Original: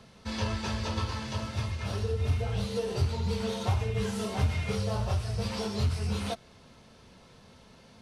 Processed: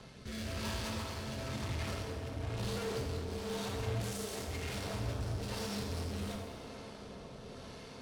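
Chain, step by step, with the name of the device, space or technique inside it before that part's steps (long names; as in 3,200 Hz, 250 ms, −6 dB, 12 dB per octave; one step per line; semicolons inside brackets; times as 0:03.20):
overdriven rotary cabinet (tube saturation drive 46 dB, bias 0.7; rotating-speaker cabinet horn 1 Hz)
0:04.01–0:04.48: bass and treble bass −6 dB, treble +8 dB
delay with a band-pass on its return 409 ms, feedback 79%, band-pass 590 Hz, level −8 dB
reverb whose tail is shaped and stops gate 450 ms falling, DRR 1 dB
level +7.5 dB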